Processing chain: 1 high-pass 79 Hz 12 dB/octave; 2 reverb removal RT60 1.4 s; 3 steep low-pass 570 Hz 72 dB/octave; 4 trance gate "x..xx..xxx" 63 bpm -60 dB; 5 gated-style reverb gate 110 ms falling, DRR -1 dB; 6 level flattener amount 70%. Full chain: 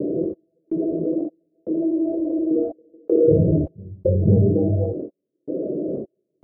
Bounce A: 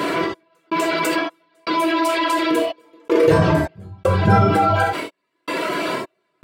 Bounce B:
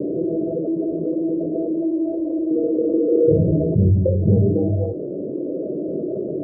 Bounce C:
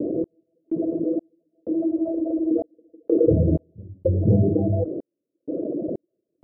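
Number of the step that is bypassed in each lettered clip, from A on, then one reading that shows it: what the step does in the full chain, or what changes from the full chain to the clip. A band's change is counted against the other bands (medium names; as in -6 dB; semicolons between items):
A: 3, momentary loudness spread change -1 LU; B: 4, crest factor change -2.0 dB; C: 5, loudness change -2.0 LU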